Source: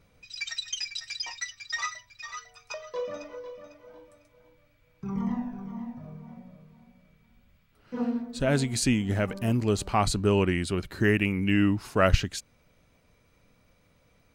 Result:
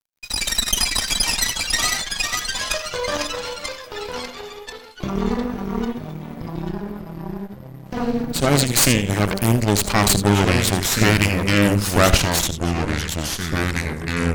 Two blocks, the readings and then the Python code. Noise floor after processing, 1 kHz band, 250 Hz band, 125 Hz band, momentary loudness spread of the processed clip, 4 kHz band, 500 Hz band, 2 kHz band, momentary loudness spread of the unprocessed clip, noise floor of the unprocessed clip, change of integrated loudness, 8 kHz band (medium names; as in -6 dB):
-39 dBFS, +9.5 dB, +7.0 dB, +9.0 dB, 16 LU, +14.5 dB, +7.0 dB, +10.5 dB, 18 LU, -65 dBFS, +8.5 dB, +16.5 dB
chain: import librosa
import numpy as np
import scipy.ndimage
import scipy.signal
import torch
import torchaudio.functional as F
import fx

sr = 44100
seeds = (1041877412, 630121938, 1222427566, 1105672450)

p1 = fx.high_shelf(x, sr, hz=3700.0, db=11.0)
p2 = fx.over_compress(p1, sr, threshold_db=-36.0, ratio=-1.0)
p3 = p1 + (p2 * librosa.db_to_amplitude(-2.0))
p4 = np.sign(p3) * np.maximum(np.abs(p3) - 10.0 ** (-43.0 / 20.0), 0.0)
p5 = p4 + fx.echo_single(p4, sr, ms=78, db=-11.5, dry=0)
p6 = fx.cheby_harmonics(p5, sr, harmonics=(8,), levels_db=(-12,), full_scale_db=-5.5)
p7 = fx.echo_pitch(p6, sr, ms=424, semitones=-3, count=3, db_per_echo=-6.0)
y = p7 * librosa.db_to_amplitude(3.0)